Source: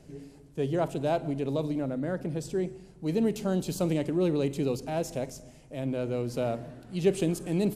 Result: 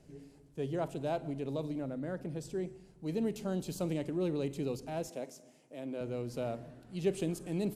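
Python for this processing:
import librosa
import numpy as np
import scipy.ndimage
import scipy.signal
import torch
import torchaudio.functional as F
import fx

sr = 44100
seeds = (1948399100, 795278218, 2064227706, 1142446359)

y = fx.cheby1_highpass(x, sr, hz=270.0, order=2, at=(5.09, 6.01))
y = y * 10.0 ** (-7.0 / 20.0)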